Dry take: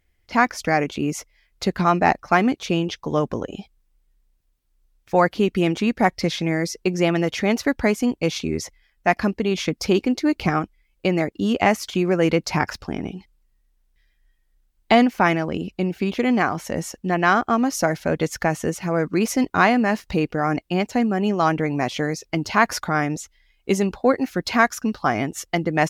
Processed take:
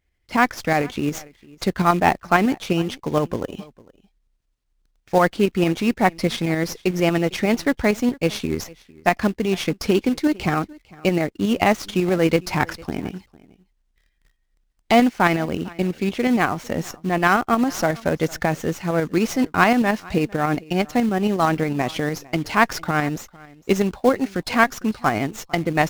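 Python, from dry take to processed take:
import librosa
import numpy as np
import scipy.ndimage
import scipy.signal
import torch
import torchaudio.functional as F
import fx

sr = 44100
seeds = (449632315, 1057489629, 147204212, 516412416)

p1 = fx.quant_companded(x, sr, bits=4)
p2 = x + F.gain(torch.from_numpy(p1), -6.5).numpy()
p3 = p2 + 10.0 ** (-23.0 / 20.0) * np.pad(p2, (int(452 * sr / 1000.0), 0))[:len(p2)]
p4 = fx.tremolo_shape(p3, sr, shape='saw_up', hz=11.0, depth_pct=45)
p5 = fx.running_max(p4, sr, window=3)
y = F.gain(torch.from_numpy(p5), -1.0).numpy()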